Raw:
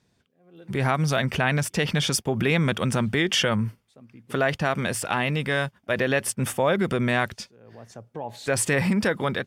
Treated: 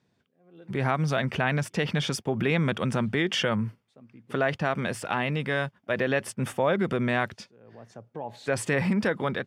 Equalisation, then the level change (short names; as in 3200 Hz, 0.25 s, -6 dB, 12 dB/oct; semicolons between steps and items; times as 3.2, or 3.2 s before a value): HPF 100 Hz; LPF 3100 Hz 6 dB/oct; -2.0 dB